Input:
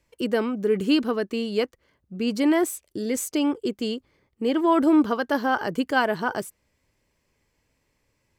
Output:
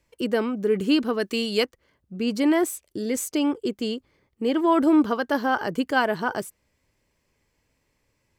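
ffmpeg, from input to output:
ffmpeg -i in.wav -filter_complex "[0:a]asplit=3[link_01][link_02][link_03];[link_01]afade=type=out:start_time=1.19:duration=0.02[link_04];[link_02]highshelf=frequency=2100:gain=10.5,afade=type=in:start_time=1.19:duration=0.02,afade=type=out:start_time=1.63:duration=0.02[link_05];[link_03]afade=type=in:start_time=1.63:duration=0.02[link_06];[link_04][link_05][link_06]amix=inputs=3:normalize=0" out.wav

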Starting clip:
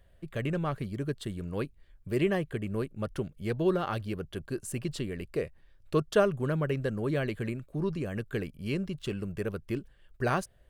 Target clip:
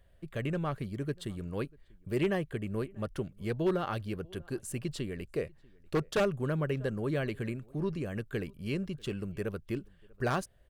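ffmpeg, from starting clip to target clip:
ffmpeg -i in.wav -filter_complex "[0:a]asplit=2[link_01][link_02];[link_02]adelay=641.4,volume=-26dB,highshelf=frequency=4000:gain=-14.4[link_03];[link_01][link_03]amix=inputs=2:normalize=0,aeval=exprs='0.112*(abs(mod(val(0)/0.112+3,4)-2)-1)':channel_layout=same,volume=-2dB" out.wav

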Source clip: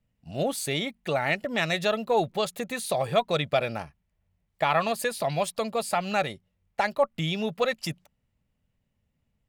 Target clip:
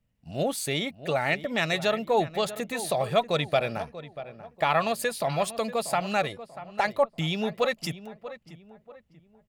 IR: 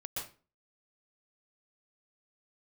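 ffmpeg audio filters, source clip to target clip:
-filter_complex "[0:a]asplit=2[link_01][link_02];[link_02]adelay=638,lowpass=frequency=1800:poles=1,volume=-13.5dB,asplit=2[link_03][link_04];[link_04]adelay=638,lowpass=frequency=1800:poles=1,volume=0.38,asplit=2[link_05][link_06];[link_06]adelay=638,lowpass=frequency=1800:poles=1,volume=0.38,asplit=2[link_07][link_08];[link_08]adelay=638,lowpass=frequency=1800:poles=1,volume=0.38[link_09];[link_01][link_03][link_05][link_07][link_09]amix=inputs=5:normalize=0"

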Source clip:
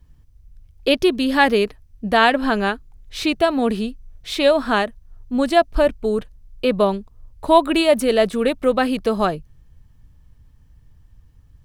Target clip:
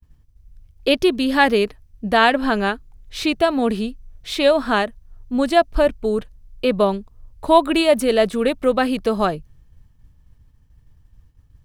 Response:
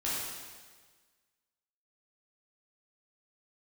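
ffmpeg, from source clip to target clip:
-af "agate=range=-33dB:threshold=-45dB:ratio=3:detection=peak"

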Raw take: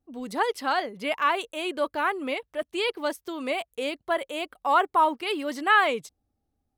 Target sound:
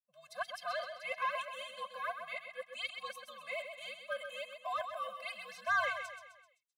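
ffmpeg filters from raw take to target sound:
ffmpeg -i in.wav -filter_complex "[0:a]agate=range=-33dB:threshold=-45dB:ratio=3:detection=peak,highpass=frequency=720:width=0.5412,highpass=frequency=720:width=1.3066,highshelf=frequency=7700:gain=-4.5,acrossover=split=1300[link_01][link_02];[link_01]alimiter=level_in=1dB:limit=-24dB:level=0:latency=1,volume=-1dB[link_03];[link_03][link_02]amix=inputs=2:normalize=0,afreqshift=-100,asoftclip=type=tanh:threshold=-16.5dB,asplit=2[link_04][link_05];[link_05]aecho=0:1:129|258|387|516|645:0.422|0.194|0.0892|0.041|0.0189[link_06];[link_04][link_06]amix=inputs=2:normalize=0,afftfilt=real='re*eq(mod(floor(b*sr/1024/250),2),0)':imag='im*eq(mod(floor(b*sr/1024/250),2),0)':win_size=1024:overlap=0.75,volume=-6.5dB" out.wav

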